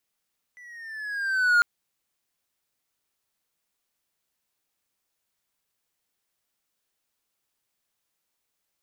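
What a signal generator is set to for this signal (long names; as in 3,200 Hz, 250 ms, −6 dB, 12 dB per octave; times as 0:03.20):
pitch glide with a swell triangle, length 1.05 s, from 1,990 Hz, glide −6 semitones, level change +30.5 dB, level −12.5 dB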